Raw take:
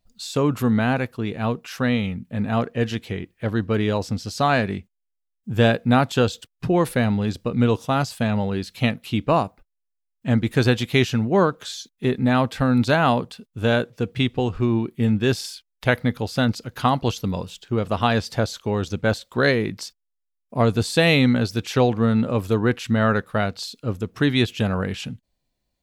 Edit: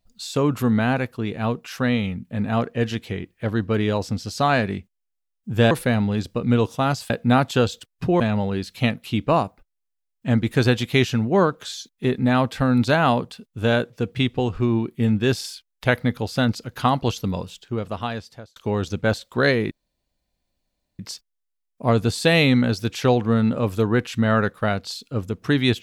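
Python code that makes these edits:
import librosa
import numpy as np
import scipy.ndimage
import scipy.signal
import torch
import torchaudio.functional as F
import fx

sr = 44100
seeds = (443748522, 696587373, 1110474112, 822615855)

y = fx.edit(x, sr, fx.move(start_s=5.71, length_s=1.1, to_s=8.2),
    fx.fade_out_span(start_s=17.34, length_s=1.22),
    fx.insert_room_tone(at_s=19.71, length_s=1.28), tone=tone)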